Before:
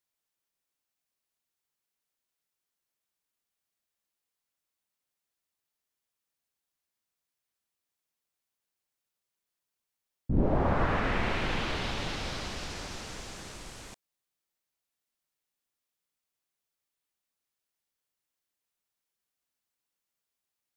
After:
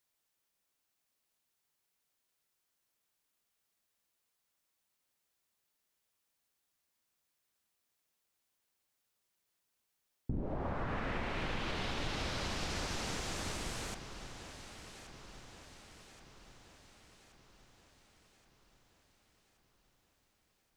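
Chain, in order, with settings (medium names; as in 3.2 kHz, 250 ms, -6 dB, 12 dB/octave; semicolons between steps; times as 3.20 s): compression 10:1, threshold -38 dBFS, peak gain reduction 18.5 dB; echo whose repeats swap between lows and highs 563 ms, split 1.5 kHz, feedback 74%, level -9 dB; trim +4 dB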